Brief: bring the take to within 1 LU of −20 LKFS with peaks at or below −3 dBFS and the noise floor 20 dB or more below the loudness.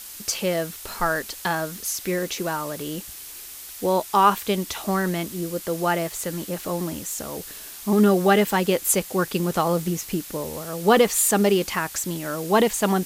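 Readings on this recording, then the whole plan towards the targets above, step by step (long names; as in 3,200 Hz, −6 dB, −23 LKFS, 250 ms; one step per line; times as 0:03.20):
background noise floor −39 dBFS; target noise floor −43 dBFS; integrated loudness −23.0 LKFS; sample peak −5.0 dBFS; target loudness −20.0 LKFS
→ broadband denoise 6 dB, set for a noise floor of −39 dBFS
level +3 dB
brickwall limiter −3 dBFS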